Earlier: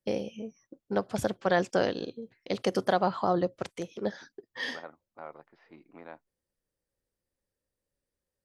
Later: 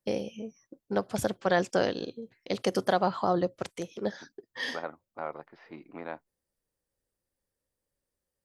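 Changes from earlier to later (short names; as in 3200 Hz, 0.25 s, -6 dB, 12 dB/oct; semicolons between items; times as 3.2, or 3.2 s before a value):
first voice: add high shelf 7500 Hz +6.5 dB; second voice +7.5 dB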